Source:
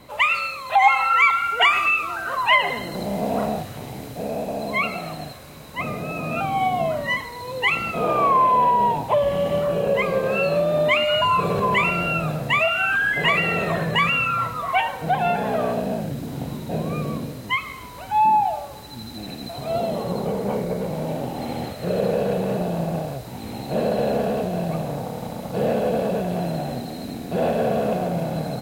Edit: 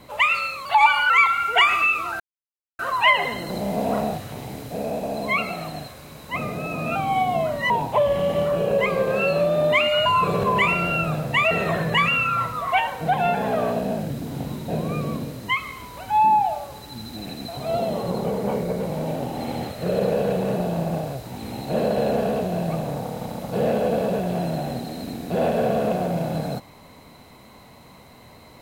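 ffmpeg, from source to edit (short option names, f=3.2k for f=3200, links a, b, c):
-filter_complex "[0:a]asplit=6[a][b][c][d][e][f];[a]atrim=end=0.654[g];[b]atrim=start=0.65:end=1.14,asetpts=PTS-STARTPTS,asetrate=48069,aresample=44100[h];[c]atrim=start=1.136:end=2.24,asetpts=PTS-STARTPTS,afade=t=out:st=1.1:d=0.004:c=hsin,apad=pad_dur=0.59[i];[d]atrim=start=2.24:end=7.152,asetpts=PTS-STARTPTS,afade=t=in:d=0.004:c=hsin[j];[e]atrim=start=8.858:end=12.672[k];[f]atrim=start=13.518[l];[g][h]acrossfade=d=0.004:c1=hsin:c2=hsin[m];[i][j]concat=n=2:v=0:a=1[n];[m][n]acrossfade=d=0.004:c1=hsin:c2=hsin[o];[o][k]acrossfade=d=0.004:c1=hsin:c2=hsin[p];[p][l]acrossfade=d=0.004:c1=hsin:c2=hsin"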